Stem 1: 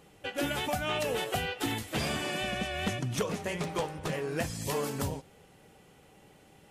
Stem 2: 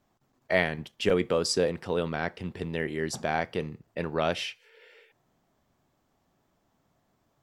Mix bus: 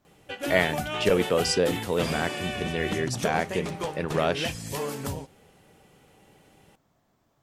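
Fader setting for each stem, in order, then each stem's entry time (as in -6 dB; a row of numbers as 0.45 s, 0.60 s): +0.5 dB, +2.0 dB; 0.05 s, 0.00 s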